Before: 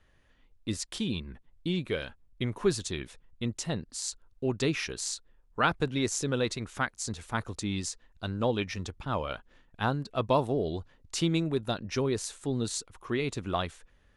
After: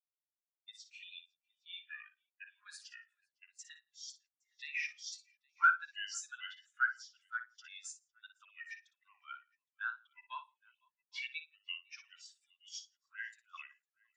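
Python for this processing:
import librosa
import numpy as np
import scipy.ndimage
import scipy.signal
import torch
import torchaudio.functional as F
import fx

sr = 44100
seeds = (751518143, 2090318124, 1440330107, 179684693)

y = fx.pitch_trill(x, sr, semitones=-4.5, every_ms=256)
y = scipy.signal.sosfilt(scipy.signal.butter(4, 1500.0, 'highpass', fs=sr, output='sos'), y)
y = fx.peak_eq(y, sr, hz=3900.0, db=-3.5, octaves=1.7)
y = np.clip(10.0 ** (31.0 / 20.0) * y, -1.0, 1.0) / 10.0 ** (31.0 / 20.0)
y = fx.echo_multitap(y, sr, ms=(59, 116, 167, 504, 507, 815), db=(-5.0, -15.0, -14.5, -17.5, -17.0, -12.0))
y = fx.spectral_expand(y, sr, expansion=2.5)
y = F.gain(torch.from_numpy(y), 9.0).numpy()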